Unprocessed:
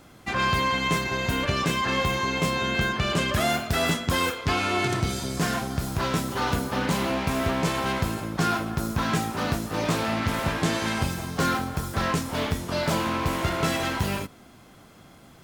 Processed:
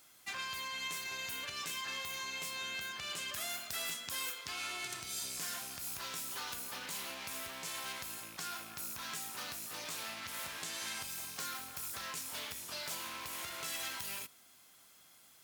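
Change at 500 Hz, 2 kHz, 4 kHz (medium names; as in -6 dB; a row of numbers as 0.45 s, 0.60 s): -24.0 dB, -14.0 dB, -9.5 dB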